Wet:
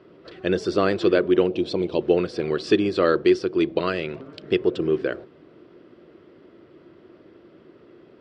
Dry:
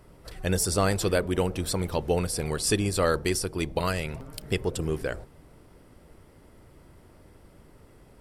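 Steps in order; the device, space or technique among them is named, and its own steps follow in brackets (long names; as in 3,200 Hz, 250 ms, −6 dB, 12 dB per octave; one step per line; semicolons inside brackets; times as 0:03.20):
0:01.47–0:02.01: flat-topped bell 1,500 Hz −11.5 dB 1 octave
kitchen radio (loudspeaker in its box 210–3,900 Hz, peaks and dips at 350 Hz +10 dB, 860 Hz −10 dB, 2,100 Hz −4 dB)
level +4.5 dB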